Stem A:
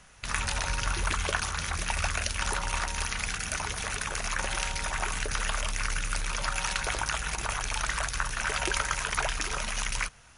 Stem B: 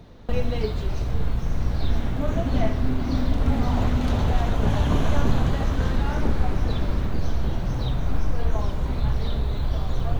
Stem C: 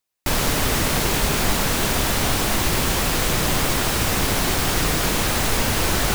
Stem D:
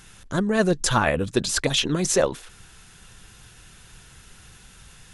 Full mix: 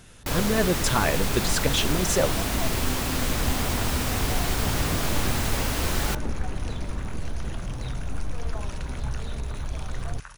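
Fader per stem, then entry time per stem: -14.0 dB, -7.0 dB, -7.5 dB, -3.5 dB; 2.05 s, 0.00 s, 0.00 s, 0.00 s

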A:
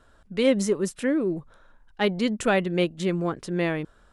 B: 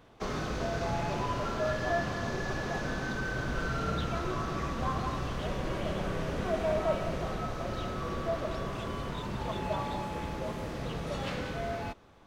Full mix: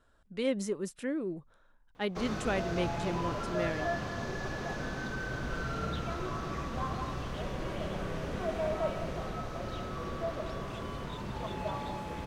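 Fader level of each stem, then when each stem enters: -10.0 dB, -3.0 dB; 0.00 s, 1.95 s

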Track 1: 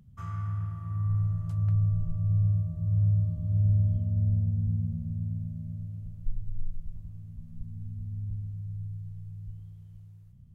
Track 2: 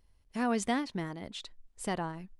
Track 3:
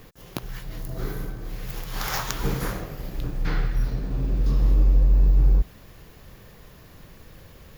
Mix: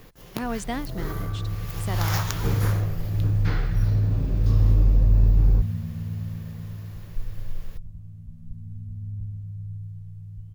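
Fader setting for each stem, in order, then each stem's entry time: +1.5 dB, 0.0 dB, -1.0 dB; 0.90 s, 0.00 s, 0.00 s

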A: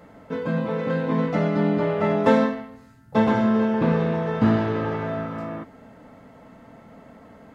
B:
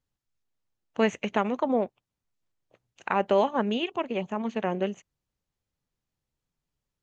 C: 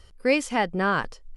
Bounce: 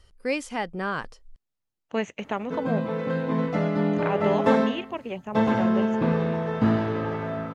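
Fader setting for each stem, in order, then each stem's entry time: -2.5 dB, -3.5 dB, -5.5 dB; 2.20 s, 0.95 s, 0.00 s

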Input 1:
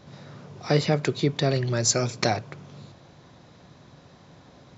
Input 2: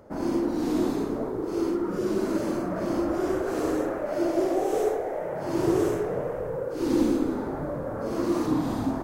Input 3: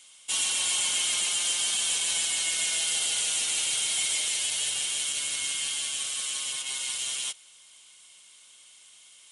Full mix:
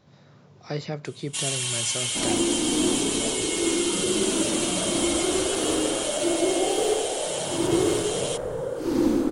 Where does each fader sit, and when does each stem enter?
-9.0 dB, +1.0 dB, -1.0 dB; 0.00 s, 2.05 s, 1.05 s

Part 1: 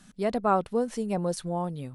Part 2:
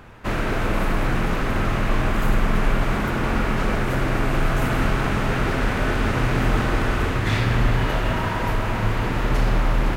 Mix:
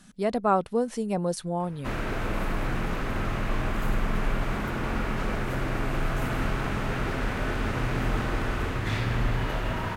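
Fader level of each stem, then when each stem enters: +1.0 dB, -7.0 dB; 0.00 s, 1.60 s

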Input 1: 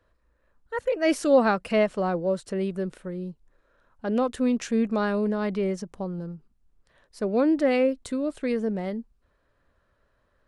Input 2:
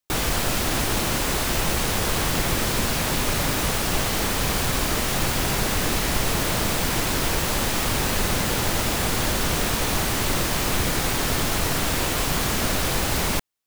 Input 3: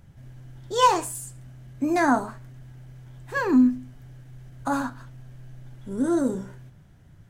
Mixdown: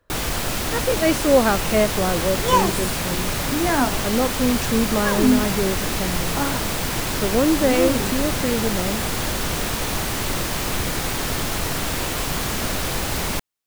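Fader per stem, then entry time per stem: +3.0 dB, -1.0 dB, 0.0 dB; 0.00 s, 0.00 s, 1.70 s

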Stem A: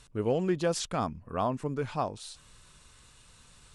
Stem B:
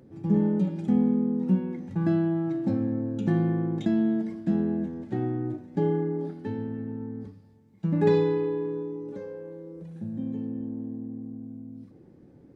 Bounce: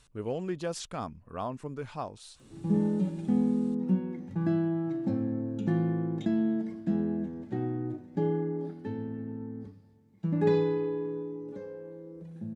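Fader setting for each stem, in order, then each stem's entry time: -5.5 dB, -3.5 dB; 0.00 s, 2.40 s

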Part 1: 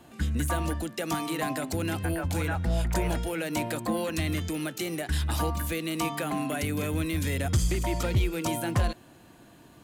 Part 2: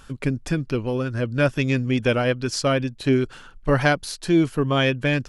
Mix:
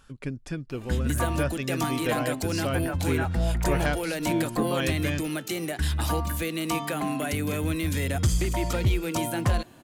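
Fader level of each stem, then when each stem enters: +1.5 dB, -9.5 dB; 0.70 s, 0.00 s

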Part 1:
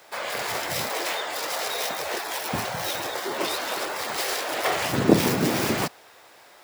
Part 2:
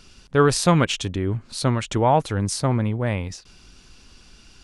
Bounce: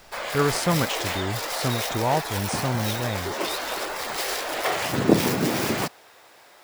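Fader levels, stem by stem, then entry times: -0.5 dB, -5.5 dB; 0.00 s, 0.00 s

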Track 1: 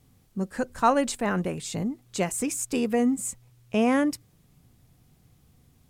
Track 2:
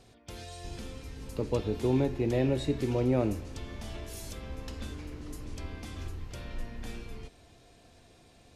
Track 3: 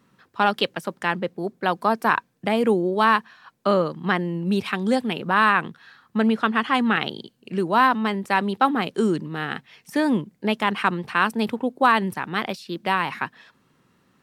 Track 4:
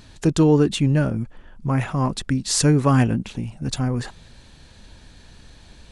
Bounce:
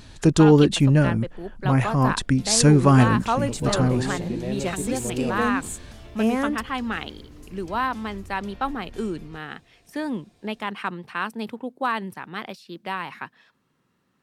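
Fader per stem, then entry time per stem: -2.5 dB, -3.5 dB, -7.5 dB, +1.5 dB; 2.45 s, 2.10 s, 0.00 s, 0.00 s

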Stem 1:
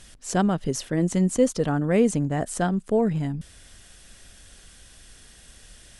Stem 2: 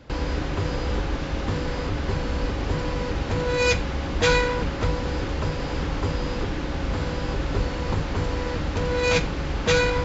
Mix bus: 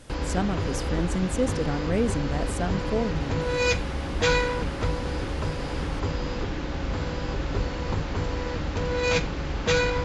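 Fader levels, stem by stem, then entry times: -5.5 dB, -2.5 dB; 0.00 s, 0.00 s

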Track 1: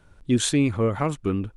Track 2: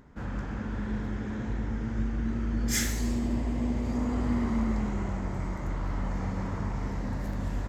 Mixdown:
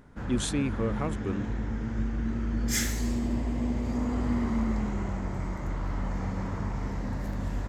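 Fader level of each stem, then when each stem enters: -8.0 dB, 0.0 dB; 0.00 s, 0.00 s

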